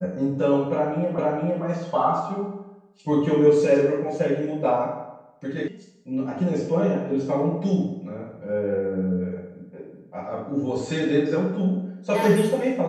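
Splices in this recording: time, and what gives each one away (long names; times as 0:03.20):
0:01.18: the same again, the last 0.46 s
0:05.68: cut off before it has died away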